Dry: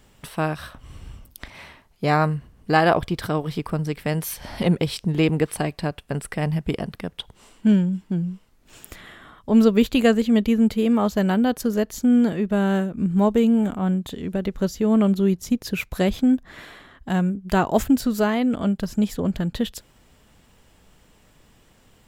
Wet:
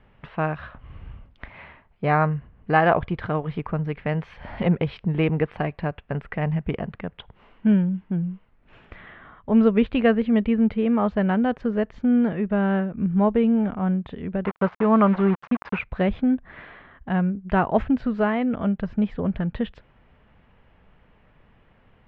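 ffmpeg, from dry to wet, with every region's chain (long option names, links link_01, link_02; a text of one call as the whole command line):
ffmpeg -i in.wav -filter_complex "[0:a]asettb=1/sr,asplit=3[link_01][link_02][link_03];[link_01]atrim=end=14.454[link_04];[link_02]atrim=start=14.45:end=15.79,asetpts=PTS-STARTPTS,afade=type=in:duration=0.004:curve=qsin,afade=type=out:start_time=1.336:duration=0.004:curve=qsin,highpass=78,aeval=exprs='val(0)*gte(abs(val(0)),0.0299)':channel_layout=same,equalizer=frequency=1100:width_type=o:width=1.3:gain=13[link_05];[link_03]atrim=start=15.786[link_06];[link_04][link_05]acrossfade=duration=0.004:curve1=hsin:curve2=qsin[link_07];[link_07][link_06]acrossfade=duration=0.004:curve1=qsin:curve2=hsin,lowpass=frequency=2500:width=0.5412,lowpass=frequency=2500:width=1.3066,equalizer=frequency=310:width_type=o:width=0.74:gain=-4.5" out.wav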